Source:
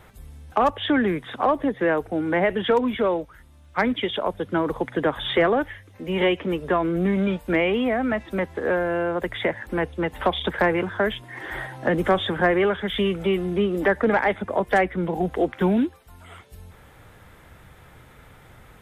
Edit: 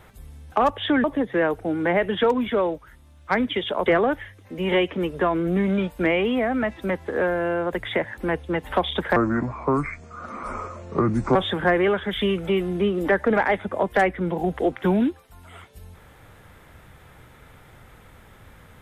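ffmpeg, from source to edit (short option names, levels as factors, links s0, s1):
-filter_complex "[0:a]asplit=5[s0][s1][s2][s3][s4];[s0]atrim=end=1.042[s5];[s1]atrim=start=1.508:end=4.332[s6];[s2]atrim=start=5.348:end=10.654[s7];[s3]atrim=start=10.65:end=12.12,asetpts=PTS-STARTPTS,asetrate=29547,aresample=44100[s8];[s4]atrim=start=12.116[s9];[s5][s6]acrossfade=d=0.004:c1=hsin:c2=hsin[s10];[s10][s7]acrossfade=d=0.004:c1=hsin:c2=hsin[s11];[s11][s8]acrossfade=d=0.004:c1=hsin:c2=hsin[s12];[s12][s9]acrossfade=d=0.004:c1=hsin:c2=hsin"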